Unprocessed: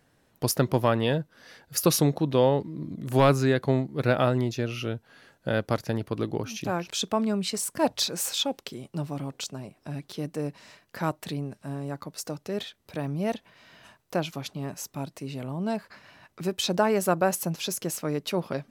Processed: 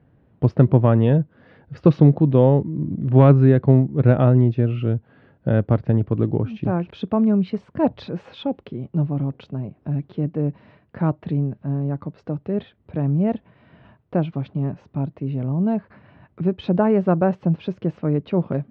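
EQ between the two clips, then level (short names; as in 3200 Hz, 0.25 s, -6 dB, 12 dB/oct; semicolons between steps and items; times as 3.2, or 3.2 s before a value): HPF 78 Hz; LPF 3400 Hz 24 dB/oct; tilt -4.5 dB/oct; 0.0 dB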